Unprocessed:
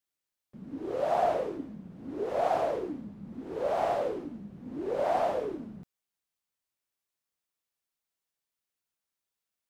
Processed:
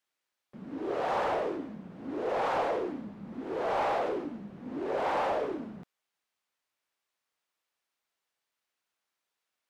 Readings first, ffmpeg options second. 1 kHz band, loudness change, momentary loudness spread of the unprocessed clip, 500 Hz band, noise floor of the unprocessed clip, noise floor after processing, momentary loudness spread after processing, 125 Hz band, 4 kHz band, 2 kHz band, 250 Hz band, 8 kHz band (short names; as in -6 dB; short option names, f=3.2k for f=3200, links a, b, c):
0.0 dB, -1.0 dB, 16 LU, -2.0 dB, under -85 dBFS, under -85 dBFS, 14 LU, -1.5 dB, +3.5 dB, +5.5 dB, +1.0 dB, n/a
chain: -filter_complex "[0:a]afftfilt=real='re*lt(hypot(re,im),0.251)':imag='im*lt(hypot(re,im),0.251)':win_size=1024:overlap=0.75,asplit=2[a][b];[b]highpass=f=720:p=1,volume=15dB,asoftclip=type=tanh:threshold=-20dB[c];[a][c]amix=inputs=2:normalize=0,lowpass=f=2.4k:p=1,volume=-6dB"